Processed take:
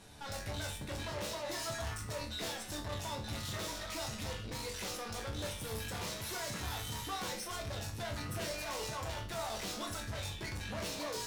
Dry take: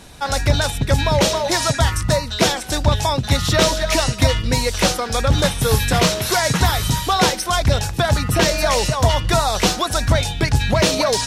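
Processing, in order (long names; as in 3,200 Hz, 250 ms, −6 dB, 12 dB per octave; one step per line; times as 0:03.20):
tube saturation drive 26 dB, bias 0.4
resonators tuned to a chord D2 sus4, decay 0.38 s
level +1 dB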